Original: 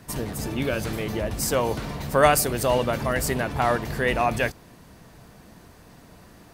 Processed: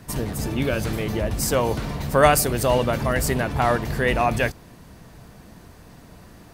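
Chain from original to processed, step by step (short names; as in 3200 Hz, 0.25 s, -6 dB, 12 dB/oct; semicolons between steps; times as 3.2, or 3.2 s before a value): low shelf 160 Hz +4.5 dB; gain +1.5 dB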